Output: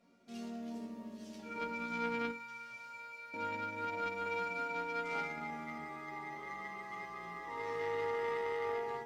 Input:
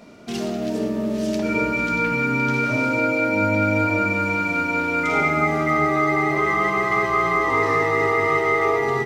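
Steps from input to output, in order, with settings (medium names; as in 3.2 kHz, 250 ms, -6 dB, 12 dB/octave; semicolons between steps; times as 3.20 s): 2.31–3.34 s: amplifier tone stack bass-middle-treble 10-0-10; chord resonator F#3 major, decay 0.31 s; Chebyshev shaper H 3 -15 dB, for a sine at -22.5 dBFS; 4.21–4.75 s: doubling 49 ms -4 dB; trim +1 dB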